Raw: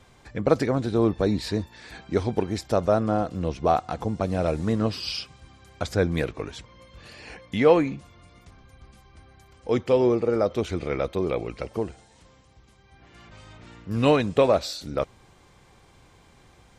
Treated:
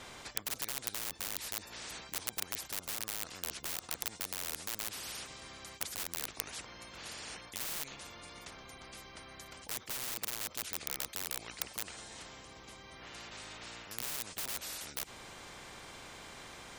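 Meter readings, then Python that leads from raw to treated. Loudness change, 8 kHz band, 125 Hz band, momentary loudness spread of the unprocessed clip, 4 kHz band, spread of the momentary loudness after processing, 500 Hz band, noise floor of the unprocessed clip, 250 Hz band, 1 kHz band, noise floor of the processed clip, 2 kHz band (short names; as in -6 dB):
-15.0 dB, n/a, -26.0 dB, 16 LU, -4.5 dB, 12 LU, -29.0 dB, -56 dBFS, -28.0 dB, -18.0 dB, -54 dBFS, -7.5 dB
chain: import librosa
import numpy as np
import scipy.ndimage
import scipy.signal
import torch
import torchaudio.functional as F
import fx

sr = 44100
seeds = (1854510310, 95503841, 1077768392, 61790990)

y = (np.mod(10.0 ** (18.0 / 20.0) * x + 1.0, 2.0) - 1.0) / 10.0 ** (18.0 / 20.0)
y = fx.spectral_comp(y, sr, ratio=10.0)
y = y * librosa.db_to_amplitude(7.0)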